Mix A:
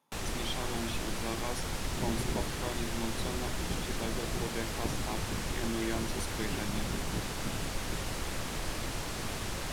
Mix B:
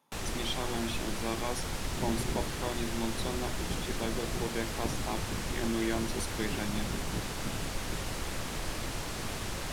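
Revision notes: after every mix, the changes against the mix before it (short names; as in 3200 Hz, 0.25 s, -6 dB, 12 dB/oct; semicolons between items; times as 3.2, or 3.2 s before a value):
speech +3.0 dB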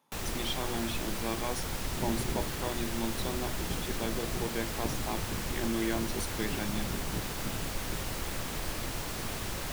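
first sound: remove LPF 11000 Hz 12 dB/oct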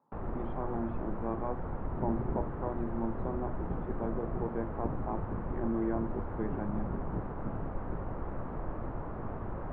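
master: add LPF 1200 Hz 24 dB/oct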